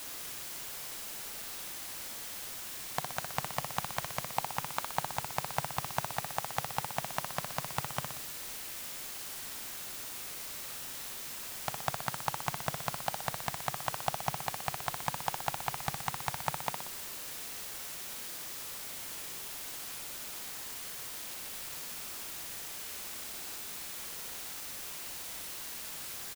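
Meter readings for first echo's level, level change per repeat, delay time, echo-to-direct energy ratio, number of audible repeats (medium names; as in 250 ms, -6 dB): -6.5 dB, -5.5 dB, 61 ms, -5.0 dB, 3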